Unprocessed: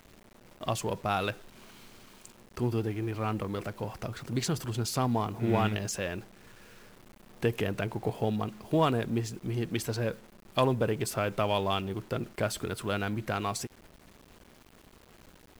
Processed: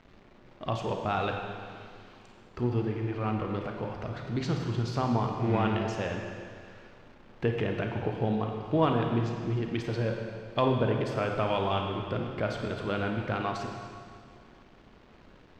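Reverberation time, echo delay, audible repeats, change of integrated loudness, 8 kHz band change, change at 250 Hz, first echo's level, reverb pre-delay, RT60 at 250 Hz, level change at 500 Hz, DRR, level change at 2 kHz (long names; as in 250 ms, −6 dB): 2.1 s, no echo audible, no echo audible, +1.0 dB, below −10 dB, +1.5 dB, no echo audible, 32 ms, 2.1 s, +1.0 dB, 2.0 dB, +0.5 dB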